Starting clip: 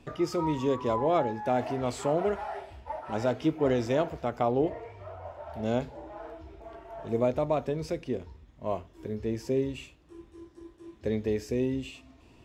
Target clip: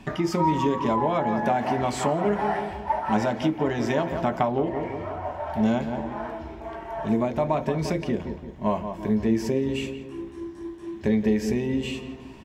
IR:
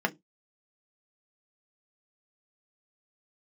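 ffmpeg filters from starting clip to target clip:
-filter_complex "[0:a]asplit=2[a][b];[b]adelay=172,lowpass=f=2.3k:p=1,volume=-11dB,asplit=2[c][d];[d]adelay=172,lowpass=f=2.3k:p=1,volume=0.5,asplit=2[e][f];[f]adelay=172,lowpass=f=2.3k:p=1,volume=0.5,asplit=2[g][h];[h]adelay=172,lowpass=f=2.3k:p=1,volume=0.5,asplit=2[i][j];[j]adelay=172,lowpass=f=2.3k:p=1,volume=0.5[k];[a][c][e][g][i][k]amix=inputs=6:normalize=0,acompressor=threshold=-29dB:ratio=6,asplit=2[l][m];[1:a]atrim=start_sample=2205,asetrate=48510,aresample=44100[n];[m][n]afir=irnorm=-1:irlink=0,volume=-10dB[o];[l][o]amix=inputs=2:normalize=0,volume=7dB"

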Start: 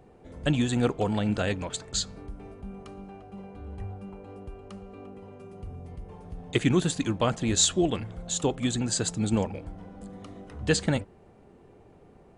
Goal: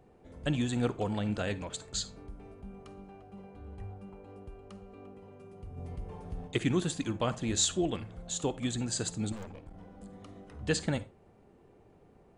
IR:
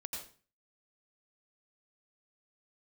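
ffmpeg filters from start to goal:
-filter_complex "[0:a]asplit=3[a][b][c];[a]afade=t=out:st=5.76:d=0.02[d];[b]acontrast=56,afade=t=in:st=5.76:d=0.02,afade=t=out:st=6.46:d=0.02[e];[c]afade=t=in:st=6.46:d=0.02[f];[d][e][f]amix=inputs=3:normalize=0,asettb=1/sr,asplit=3[g][h][i];[g]atrim=end=9.324[j];[h]atrim=start=9.32:end=9.74,asetpts=PTS-STARTPTS,afade=t=in:d=0.004:c=qsin,afade=t=out:st=0.416:d=0.004:c=qsin,aeval=exprs='(tanh(56.2*val(0)+0.65)-tanh(0.65))/56.2':c=same[k];[i]atrim=start=9.736[l];[j][k]acrossfade=d=0.004:c1=hsin:c2=qsin[m];[m][l]acrossfade=d=0.004:c1=qsin:c2=hsin,asplit=2[n][o];[1:a]atrim=start_sample=2205,asetrate=79380,aresample=44100[p];[o][p]afir=irnorm=-1:irlink=0,volume=-6.5dB[q];[n][q]amix=inputs=2:normalize=0,volume=-7dB"

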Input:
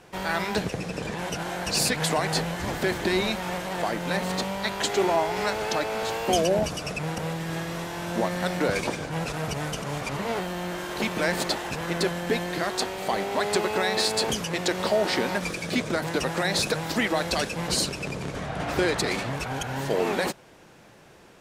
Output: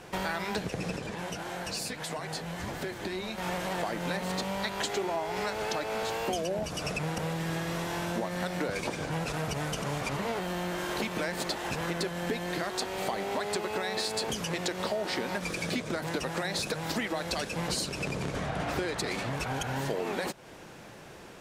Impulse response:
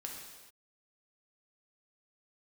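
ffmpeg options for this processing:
-filter_complex "[0:a]acompressor=threshold=-34dB:ratio=5,asettb=1/sr,asplit=3[a][b][c];[a]atrim=end=0.964[d];[b]atrim=start=0.96:end=3.38,asetpts=PTS-STARTPTS,afade=t=in:d=0.004:c=qsin,afade=t=out:st=2.416:d=0.004:c=qsin,flanger=delay=7:depth=4.2:regen=-51:speed=1.6:shape=triangular[e];[c]atrim=start=3.376[f];[d][e]acrossfade=d=0.004:c1=hsin:c2=qsin[g];[g][f]acrossfade=d=0.004:c1=qsin:c2=hsin,volume=4dB"

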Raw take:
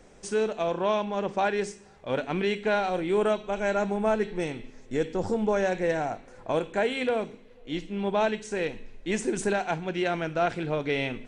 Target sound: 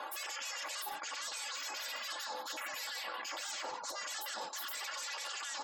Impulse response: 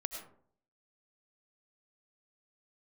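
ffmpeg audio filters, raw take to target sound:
-filter_complex "[0:a]afftfilt=real='re*lt(hypot(re,im),0.0398)':imag='im*lt(hypot(re,im),0.0398)':win_size=1024:overlap=0.75,equalizer=f=3.8k:w=6.4:g=3.5,asplit=2[a][b];[b]aeval=exprs='(mod(47.3*val(0)+1,2)-1)/47.3':c=same,volume=-5.5dB[c];[a][c]amix=inputs=2:normalize=0,highpass=500,tiltshelf=f=680:g=7,aecho=1:1:7.1:0.62,asplit=6[d][e][f][g][h][i];[e]adelay=177,afreqshift=-100,volume=-19dB[j];[f]adelay=354,afreqshift=-200,volume=-24dB[k];[g]adelay=531,afreqshift=-300,volume=-29.1dB[l];[h]adelay=708,afreqshift=-400,volume=-34.1dB[m];[i]adelay=885,afreqshift=-500,volume=-39.1dB[n];[d][j][k][l][m][n]amix=inputs=6:normalize=0,acontrast=31,alimiter=level_in=7.5dB:limit=-24dB:level=0:latency=1:release=80,volume=-7.5dB,areverse,acompressor=threshold=-52dB:ratio=16,areverse,asetrate=88200,aresample=44100,afftfilt=real='re*gte(hypot(re,im),0.000562)':imag='im*gte(hypot(re,im),0.000562)':win_size=1024:overlap=0.75,volume=14dB"

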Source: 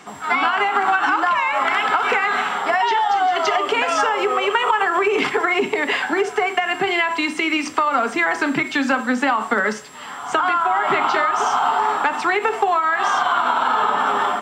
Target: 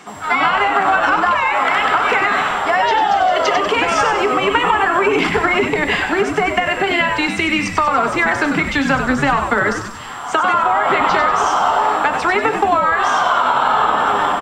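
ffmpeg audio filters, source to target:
-filter_complex "[0:a]asplit=7[a][b][c][d][e][f][g];[b]adelay=96,afreqshift=-110,volume=-7.5dB[h];[c]adelay=192,afreqshift=-220,volume=-13.3dB[i];[d]adelay=288,afreqshift=-330,volume=-19.2dB[j];[e]adelay=384,afreqshift=-440,volume=-25dB[k];[f]adelay=480,afreqshift=-550,volume=-30.9dB[l];[g]adelay=576,afreqshift=-660,volume=-36.7dB[m];[a][h][i][j][k][l][m]amix=inputs=7:normalize=0,volume=2.5dB"

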